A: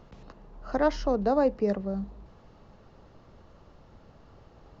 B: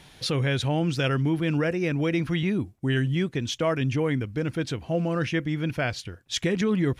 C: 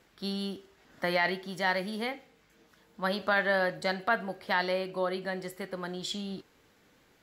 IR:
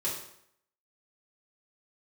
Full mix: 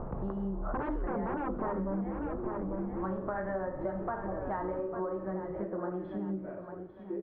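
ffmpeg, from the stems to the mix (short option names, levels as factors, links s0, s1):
-filter_complex "[0:a]bandreject=f=50:t=h:w=6,bandreject=f=100:t=h:w=6,bandreject=f=150:t=h:w=6,bandreject=f=200:t=h:w=6,bandreject=f=250:t=h:w=6,bandreject=f=300:t=h:w=6,bandreject=f=350:t=h:w=6,bandreject=f=400:t=h:w=6,bandreject=f=450:t=h:w=6,aeval=exprs='0.211*sin(PI/2*5.01*val(0)/0.211)':c=same,volume=0.708,asplit=4[s0][s1][s2][s3];[s1]volume=0.0668[s4];[s2]volume=0.299[s5];[1:a]lowshelf=f=230:t=q:w=3:g=-11,acompressor=threshold=0.0282:ratio=2,adelay=650,volume=0.708,asplit=2[s6][s7];[s7]volume=0.251[s8];[2:a]flanger=delay=2.9:depth=9.9:regen=48:speed=0.77:shape=triangular,volume=1.41,asplit=3[s9][s10][s11];[s10]volume=0.631[s12];[s11]volume=0.376[s13];[s3]apad=whole_len=337167[s14];[s6][s14]sidechaingate=range=0.0224:threshold=0.0158:ratio=16:detection=peak[s15];[3:a]atrim=start_sample=2205[s16];[s4][s8][s12]amix=inputs=3:normalize=0[s17];[s17][s16]afir=irnorm=-1:irlink=0[s18];[s5][s13]amix=inputs=2:normalize=0,aecho=0:1:849|1698|2547|3396|4245:1|0.32|0.102|0.0328|0.0105[s19];[s0][s15][s9][s18][s19]amix=inputs=5:normalize=0,lowpass=f=1200:w=0.5412,lowpass=f=1200:w=1.3066,acompressor=threshold=0.0251:ratio=6"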